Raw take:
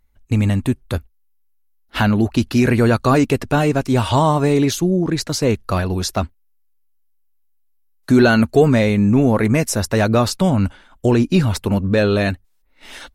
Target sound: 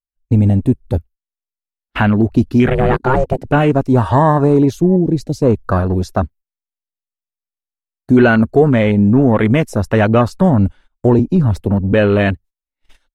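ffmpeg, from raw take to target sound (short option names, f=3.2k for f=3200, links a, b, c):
-filter_complex "[0:a]asplit=3[a][b][c];[a]afade=t=out:st=2.67:d=0.02[d];[b]aeval=exprs='val(0)*sin(2*PI*260*n/s)':c=same,afade=t=in:st=2.67:d=0.02,afade=t=out:st=3.43:d=0.02[e];[c]afade=t=in:st=3.43:d=0.02[f];[d][e][f]amix=inputs=3:normalize=0,afwtdn=0.0501,asettb=1/sr,asplit=3[g][h][i];[g]atrim=end=4.964[j];[h]atrim=start=4.96:end=5.42,asetpts=PTS-STARTPTS,afade=t=in:d=0.004:c=qsin,afade=t=out:st=0.456:d=0.004:c=qsin,equalizer=f=1.3k:t=o:w=1.3:g=-13[k];[i]atrim=start=5.416[l];[j][k]acrossfade=d=0.004:c1=hsin:c2=qsin[m];[m][l]acrossfade=d=0.004:c1=qsin:c2=hsin,asettb=1/sr,asplit=3[n][o][p];[n]atrim=end=11.194[q];[o]atrim=start=11.19:end=11.93,asetpts=PTS-STARTPTS,afade=t=in:d=0.004:c=qsin,afade=t=out:st=0.736:d=0.004:c=qsin,acrossover=split=190[r][s];[s]acompressor=threshold=-21dB:ratio=6[t];[r][t]amix=inputs=2:normalize=0[u];[p]atrim=start=11.926[v];[q][u]acrossfade=d=0.004:c1=hsin:c2=qsin[w];[w][v]acrossfade=d=0.004:c1=qsin:c2=hsin,agate=range=-21dB:threshold=-42dB:ratio=16:detection=peak,dynaudnorm=f=100:g=3:m=6dB"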